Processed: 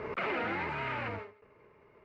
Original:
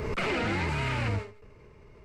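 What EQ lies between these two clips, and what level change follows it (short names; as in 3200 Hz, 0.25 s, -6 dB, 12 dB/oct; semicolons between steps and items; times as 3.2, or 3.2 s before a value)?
HPF 570 Hz 6 dB/oct; LPF 2000 Hz 12 dB/oct; 0.0 dB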